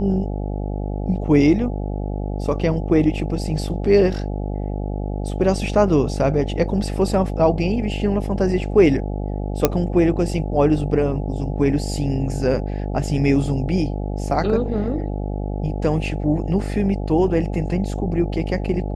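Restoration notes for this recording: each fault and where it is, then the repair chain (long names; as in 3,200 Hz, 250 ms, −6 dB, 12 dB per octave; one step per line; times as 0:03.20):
mains buzz 50 Hz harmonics 17 −25 dBFS
0:09.65: click 0 dBFS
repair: click removal
hum removal 50 Hz, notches 17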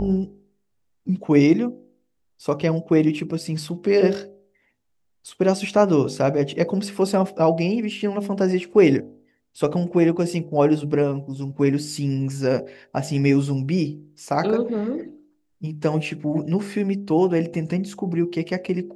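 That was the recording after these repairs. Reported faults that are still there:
none of them is left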